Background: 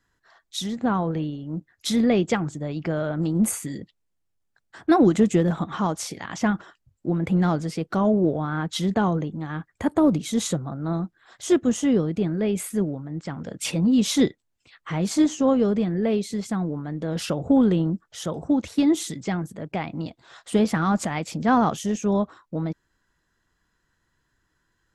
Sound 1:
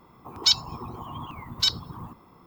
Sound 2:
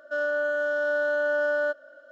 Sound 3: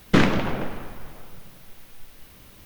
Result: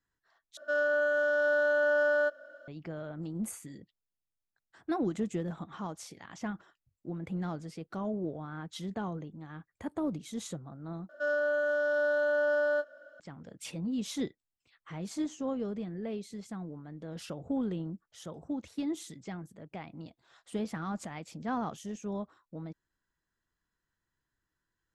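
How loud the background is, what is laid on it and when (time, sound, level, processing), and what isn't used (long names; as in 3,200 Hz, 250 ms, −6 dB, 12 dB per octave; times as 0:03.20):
background −14.5 dB
0:00.57: overwrite with 2 −1.5 dB
0:11.09: overwrite with 2 −4 dB + double-tracking delay 24 ms −11 dB
not used: 1, 3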